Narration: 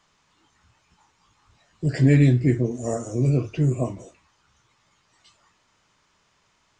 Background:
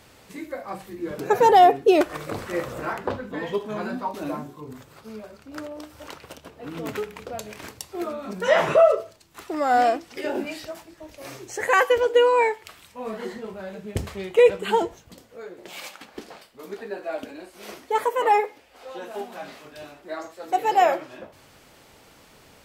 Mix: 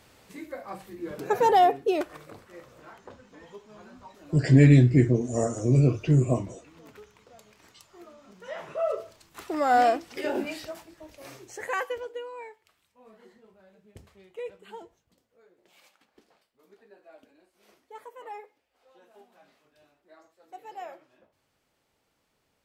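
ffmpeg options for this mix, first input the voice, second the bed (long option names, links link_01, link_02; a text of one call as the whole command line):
ffmpeg -i stem1.wav -i stem2.wav -filter_complex "[0:a]adelay=2500,volume=0.5dB[link_01];[1:a]volume=13dB,afade=type=out:start_time=1.55:duration=0.9:silence=0.188365,afade=type=in:start_time=8.75:duration=0.47:silence=0.125893,afade=type=out:start_time=10.41:duration=1.82:silence=0.0944061[link_02];[link_01][link_02]amix=inputs=2:normalize=0" out.wav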